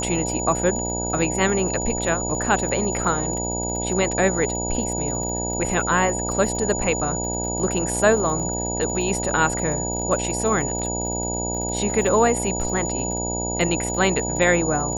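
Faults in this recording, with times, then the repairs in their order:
mains buzz 60 Hz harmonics 16 −28 dBFS
surface crackle 31 per second −30 dBFS
whistle 6,900 Hz −27 dBFS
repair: click removal
hum removal 60 Hz, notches 16
notch filter 6,900 Hz, Q 30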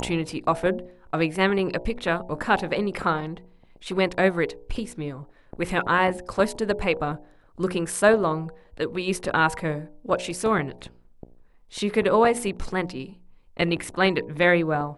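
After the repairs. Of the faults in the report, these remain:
none of them is left

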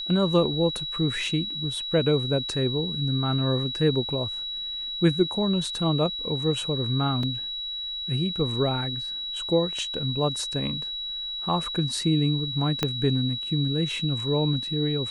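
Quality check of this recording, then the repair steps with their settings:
whistle 3,900 Hz −30 dBFS
0:07.23: drop-out 3.1 ms
0:12.83: click −9 dBFS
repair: click removal
notch filter 3,900 Hz, Q 30
repair the gap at 0:07.23, 3.1 ms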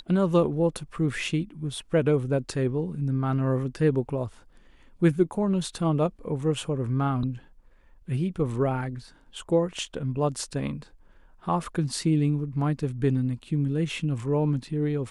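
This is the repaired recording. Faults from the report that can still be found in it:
0:12.83: click

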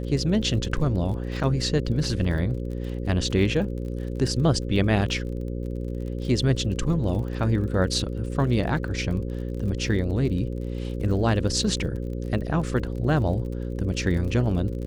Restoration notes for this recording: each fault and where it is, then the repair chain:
mains buzz 60 Hz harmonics 9 −30 dBFS
surface crackle 44 per second −34 dBFS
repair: click removal
hum removal 60 Hz, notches 9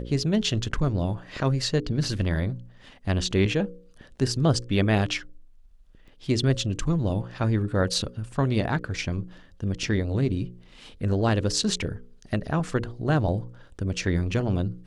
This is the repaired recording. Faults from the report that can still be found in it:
none of them is left

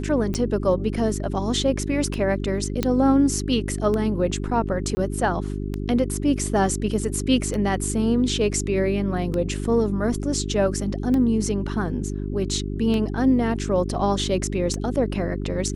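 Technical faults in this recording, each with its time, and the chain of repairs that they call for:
mains hum 50 Hz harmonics 8 −28 dBFS
scratch tick 33 1/3 rpm −15 dBFS
0:02.83: click −8 dBFS
0:04.95–0:04.97: drop-out 20 ms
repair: click removal
hum removal 50 Hz, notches 8
repair the gap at 0:04.95, 20 ms

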